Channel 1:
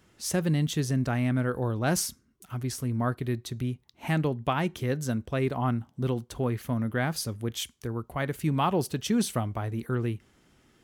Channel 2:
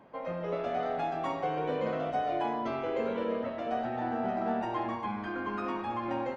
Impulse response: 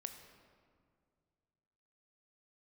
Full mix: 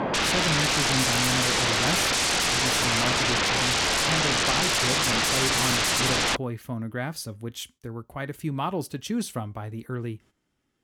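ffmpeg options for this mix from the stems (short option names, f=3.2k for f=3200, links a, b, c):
-filter_complex "[0:a]flanger=delay=3:depth=1:regen=83:speed=0.59:shape=triangular,agate=range=-11dB:threshold=-54dB:ratio=16:detection=peak,volume=-4.5dB[a];[1:a]lowpass=5.2k,alimiter=level_in=5.5dB:limit=-24dB:level=0:latency=1:release=151,volume=-5.5dB,aeval=exprs='0.0335*sin(PI/2*8.91*val(0)/0.0335)':c=same,volume=2dB[b];[a][b]amix=inputs=2:normalize=0,acontrast=64"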